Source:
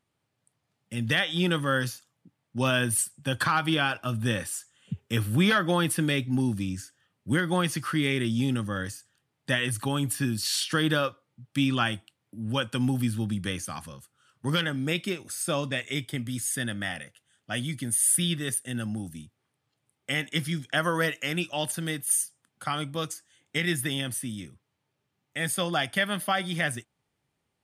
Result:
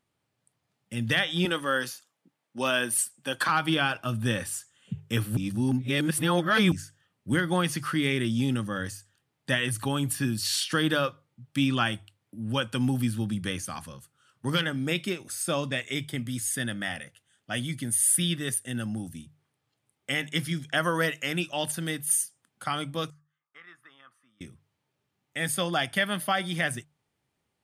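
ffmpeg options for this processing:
ffmpeg -i in.wav -filter_complex "[0:a]asettb=1/sr,asplit=3[link_01][link_02][link_03];[link_01]atrim=end=1.454[link_04];[link_02]atrim=start=1.45:end=3.49,asetpts=PTS-STARTPTS,afade=type=in:duration=0.004:curve=qsin,afade=type=out:start_time=2.036:duration=0.004:curve=qsin,highpass=300[link_05];[link_03]atrim=start=3.486[link_06];[link_04][link_05]acrossfade=duration=0.004:curve1=hsin:curve2=qsin[link_07];[link_07][link_06]acrossfade=duration=0.004:curve1=qsin:curve2=hsin,asettb=1/sr,asplit=3[link_08][link_09][link_10];[link_08]atrim=end=23.104[link_11];[link_09]atrim=start=23.1:end=24.41,asetpts=PTS-STARTPTS,afade=type=in:duration=0.004:curve=qsin,afade=type=out:start_time=1.306:duration=0.004:curve=qsin,bandpass=frequency=1200:width_type=q:width=9.9[link_12];[link_10]atrim=start=24.406[link_13];[link_11][link_12]acrossfade=duration=0.004:curve1=hsin:curve2=qsin[link_14];[link_14][link_13]acrossfade=duration=0.004:curve1=qsin:curve2=hsin,asplit=3[link_15][link_16][link_17];[link_15]atrim=end=5.372[link_18];[link_16]atrim=start=5.368:end=6.722,asetpts=PTS-STARTPTS,areverse[link_19];[link_17]atrim=start=6.718[link_20];[link_18][link_19]acrossfade=duration=0.004:curve1=hsin:curve2=hsin[link_21];[link_21][link_20]acrossfade=duration=0.004:curve1=hsin:curve2=hsin,bandreject=frequency=50:width_type=h:width=6,bandreject=frequency=100:width_type=h:width=6,bandreject=frequency=150:width_type=h:width=6" out.wav

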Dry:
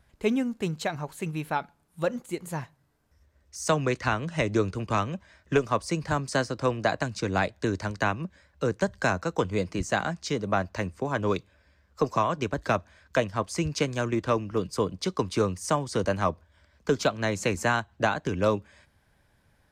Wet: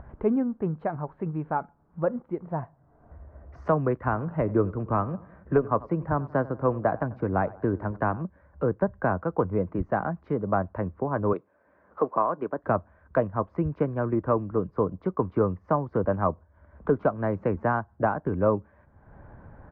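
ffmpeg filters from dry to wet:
ffmpeg -i in.wav -filter_complex "[0:a]asettb=1/sr,asplit=3[link_01][link_02][link_03];[link_01]atrim=end=2.434[link_04];[link_02]atrim=start=2.43:end=3.61,asetpts=PTS-STARTPTS,afade=type=in:duration=0.004:curve=qsin,afade=type=out:start_time=1.176:duration=0.004:curve=qsin,equalizer=frequency=690:width=5.2:gain=9[link_05];[link_03]atrim=start=3.606[link_06];[link_04][link_05]acrossfade=duration=0.004:curve1=hsin:curve2=qsin[link_07];[link_07][link_06]acrossfade=duration=0.004:curve1=qsin:curve2=hsin,asplit=3[link_08][link_09][link_10];[link_08]afade=type=out:start_time=4.11:duration=0.02[link_11];[link_09]asplit=2[link_12][link_13];[link_13]adelay=92,lowpass=frequency=1900:poles=1,volume=-19dB,asplit=2[link_14][link_15];[link_15]adelay=92,lowpass=frequency=1900:poles=1,volume=0.49,asplit=2[link_16][link_17];[link_17]adelay=92,lowpass=frequency=1900:poles=1,volume=0.49,asplit=2[link_18][link_19];[link_19]adelay=92,lowpass=frequency=1900:poles=1,volume=0.49[link_20];[link_12][link_14][link_16][link_18][link_20]amix=inputs=5:normalize=0,afade=type=in:start_time=4.11:duration=0.02,afade=type=out:start_time=8.22:duration=0.02[link_21];[link_10]afade=type=in:start_time=8.22:duration=0.02[link_22];[link_11][link_21][link_22]amix=inputs=3:normalize=0,asettb=1/sr,asplit=3[link_23][link_24][link_25];[link_23]atrim=end=11.334[link_26];[link_24]atrim=start=11.33:end=12.64,asetpts=PTS-STARTPTS,afade=type=in:duration=0.004:curve=qsin,afade=type=out:start_time=1.306:duration=0.004:curve=qsin,highpass=290[link_27];[link_25]atrim=start=12.636[link_28];[link_26][link_27]acrossfade=duration=0.004:curve1=hsin:curve2=qsin[link_29];[link_29][link_28]acrossfade=duration=0.004:curve1=qsin:curve2=hsin,lowpass=frequency=1300:width=0.5412,lowpass=frequency=1300:width=1.3066,acompressor=mode=upward:threshold=-33dB:ratio=2.5,volume=1.5dB" out.wav

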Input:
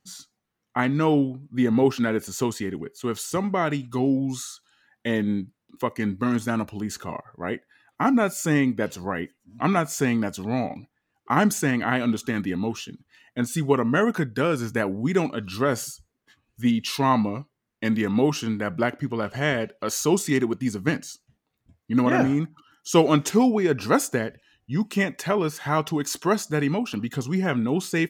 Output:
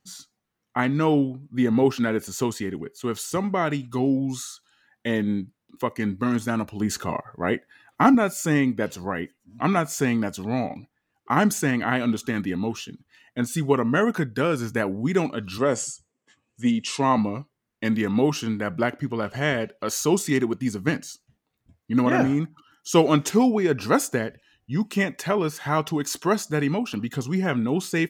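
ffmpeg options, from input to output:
ffmpeg -i in.wav -filter_complex "[0:a]asettb=1/sr,asplit=3[link_01][link_02][link_03];[link_01]atrim=end=6.804[link_04];[link_02]atrim=start=6.8:end=8.15,asetpts=PTS-STARTPTS,afade=type=in:duration=0.004:curve=qsin,afade=type=out:start_time=1.346:duration=0.004:curve=qsin,acontrast=29[link_05];[link_03]atrim=start=8.146[link_06];[link_04][link_05]acrossfade=duration=0.004:curve1=hsin:curve2=qsin[link_07];[link_07][link_06]acrossfade=duration=0.004:curve1=qsin:curve2=hsin,asettb=1/sr,asplit=3[link_08][link_09][link_10];[link_08]atrim=end=15.584[link_11];[link_09]atrim=start=15.58:end=17.18,asetpts=PTS-STARTPTS,afade=type=in:duration=0.004:curve=qsin,afade=type=out:start_time=1.596:duration=0.004:curve=qsin,highpass=130,equalizer=frequency=520:width_type=q:width=4:gain=4,equalizer=frequency=1500:width_type=q:width=4:gain=-5,equalizer=frequency=4100:width_type=q:width=4:gain=-6,equalizer=frequency=7700:width_type=q:width=4:gain=10,lowpass=frequency=8800:width=0.5412,lowpass=frequency=8800:width=1.3066[link_12];[link_10]atrim=start=17.176[link_13];[link_11][link_12]acrossfade=duration=0.004:curve1=hsin:curve2=qsin[link_14];[link_14][link_13]acrossfade=duration=0.004:curve1=qsin:curve2=hsin" out.wav

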